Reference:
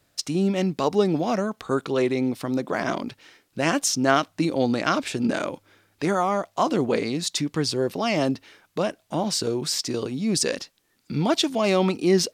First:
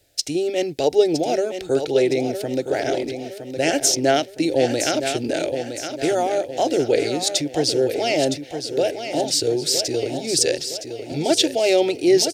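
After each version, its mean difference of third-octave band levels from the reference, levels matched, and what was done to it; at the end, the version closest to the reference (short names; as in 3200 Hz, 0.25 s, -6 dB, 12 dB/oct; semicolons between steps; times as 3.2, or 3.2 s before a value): 6.0 dB: Butterworth band-stop 1000 Hz, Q 6.6; fixed phaser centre 480 Hz, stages 4; on a send: feedback echo 0.964 s, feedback 45%, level -8.5 dB; on the sum: gain +6 dB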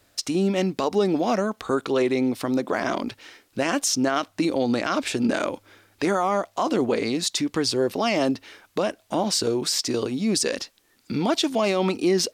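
2.0 dB: bell 150 Hz -11 dB 0.43 oct; in parallel at -1.5 dB: compressor, threshold -31 dBFS, peak gain reduction 16 dB; on the sum: limiter -12.5 dBFS, peak gain reduction 8.5 dB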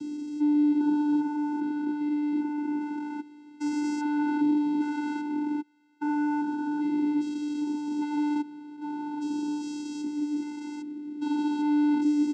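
14.0 dB: stepped spectrum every 0.4 s; comb 6.4 ms, depth 77%; vocoder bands 8, square 296 Hz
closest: second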